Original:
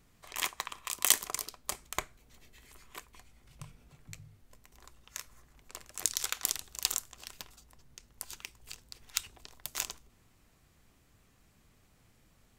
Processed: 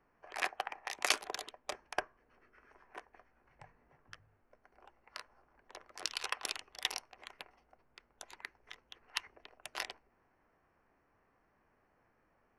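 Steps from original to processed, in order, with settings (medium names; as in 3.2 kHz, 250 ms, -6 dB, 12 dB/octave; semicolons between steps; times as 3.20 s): local Wiener filter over 9 samples; formant shift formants -5 st; three-band isolator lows -16 dB, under 300 Hz, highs -13 dB, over 3.5 kHz; trim +1 dB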